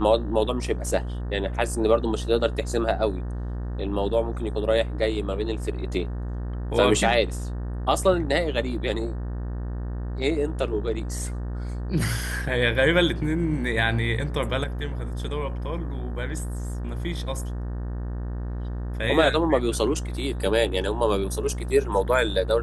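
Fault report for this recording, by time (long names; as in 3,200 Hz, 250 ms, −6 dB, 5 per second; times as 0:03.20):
mains buzz 60 Hz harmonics 31 −30 dBFS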